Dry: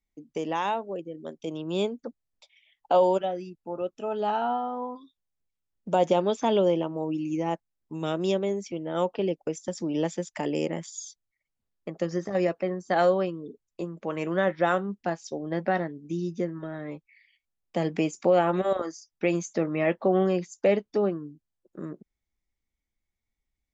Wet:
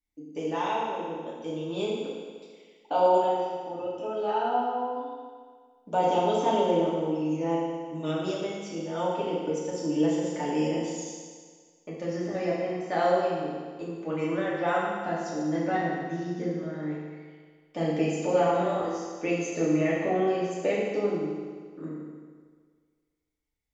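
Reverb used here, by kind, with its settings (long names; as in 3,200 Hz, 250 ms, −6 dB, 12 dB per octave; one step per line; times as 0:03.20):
feedback delay network reverb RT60 1.7 s, low-frequency decay 0.9×, high-frequency decay 1×, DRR −7 dB
level −8 dB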